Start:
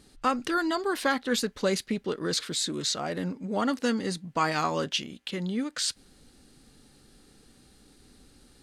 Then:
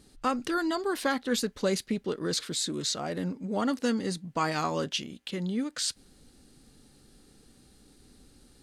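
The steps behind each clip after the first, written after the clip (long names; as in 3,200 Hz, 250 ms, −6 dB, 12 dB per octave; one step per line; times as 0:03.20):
parametric band 1,800 Hz −3.5 dB 2.9 octaves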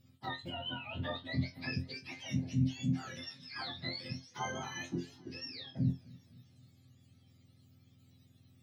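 frequency axis turned over on the octave scale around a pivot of 990 Hz
resonators tuned to a chord F2 fifth, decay 0.21 s
feedback echo with a swinging delay time 260 ms, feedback 55%, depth 81 cents, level −22.5 dB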